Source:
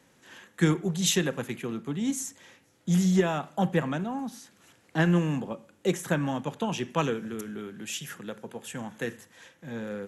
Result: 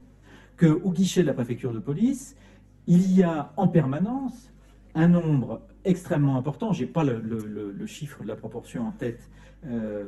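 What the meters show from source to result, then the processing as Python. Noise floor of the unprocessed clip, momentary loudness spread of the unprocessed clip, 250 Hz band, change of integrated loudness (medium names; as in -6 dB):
-63 dBFS, 15 LU, +5.0 dB, +4.0 dB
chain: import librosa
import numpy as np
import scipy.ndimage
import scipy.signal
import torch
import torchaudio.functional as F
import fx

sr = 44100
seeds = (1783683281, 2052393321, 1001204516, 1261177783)

y = fx.add_hum(x, sr, base_hz=50, snr_db=27)
y = fx.chorus_voices(y, sr, voices=6, hz=0.25, base_ms=12, depth_ms=5.0, mix_pct=55)
y = fx.tilt_shelf(y, sr, db=7.5, hz=920.0)
y = y * 10.0 ** (2.5 / 20.0)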